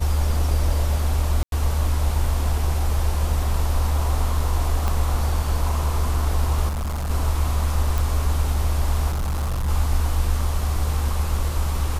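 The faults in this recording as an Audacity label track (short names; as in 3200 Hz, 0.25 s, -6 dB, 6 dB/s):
1.430000	1.520000	gap 92 ms
4.880000	4.880000	pop -10 dBFS
6.680000	7.110000	clipped -23 dBFS
7.980000	7.980000	pop
9.090000	9.690000	clipped -20.5 dBFS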